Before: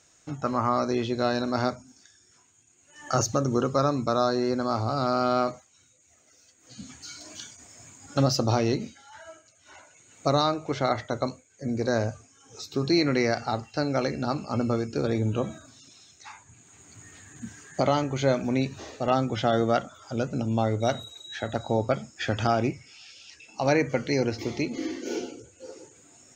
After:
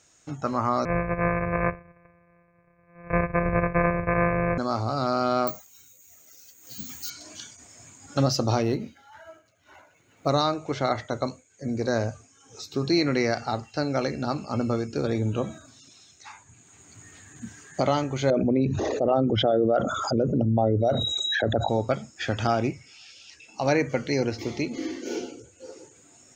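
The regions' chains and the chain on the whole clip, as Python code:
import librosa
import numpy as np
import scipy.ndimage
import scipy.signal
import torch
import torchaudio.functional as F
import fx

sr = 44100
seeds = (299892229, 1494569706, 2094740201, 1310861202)

y = fx.chain(x, sr, fx.sample_sort(block=256),
    fx.brickwall_lowpass(high_hz=2700.0),
    fx.comb(ms=1.8, depth=0.78), at=(0.85, 4.58))
y = fx.chain(y, sr, fx.high_shelf(hz=4000.0, db=8.0),
    fx.resample_bad(factor=2, down='filtered', up='zero_stuff'), at=(5.47, 7.1))
y = fx.chain(y, sr, fx.median_filter(points=5),
    fx.high_shelf(hz=3900.0, db=-10.0), at=(8.62, 10.29))
y = fx.chain(y, sr, fx.envelope_sharpen(power=2.0),
    fx.env_flatten(amount_pct=70), at=(18.3, 21.69))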